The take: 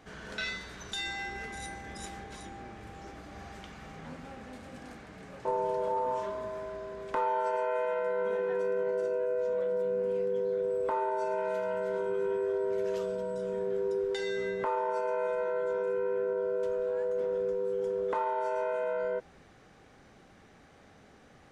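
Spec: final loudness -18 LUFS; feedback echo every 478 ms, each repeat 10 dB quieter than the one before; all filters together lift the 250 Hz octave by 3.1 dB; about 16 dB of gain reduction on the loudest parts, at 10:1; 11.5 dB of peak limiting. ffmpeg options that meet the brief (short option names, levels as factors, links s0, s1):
-af "equalizer=f=250:t=o:g=6,acompressor=threshold=0.00708:ratio=10,alimiter=level_in=7.08:limit=0.0631:level=0:latency=1,volume=0.141,aecho=1:1:478|956|1434|1912:0.316|0.101|0.0324|0.0104,volume=31.6"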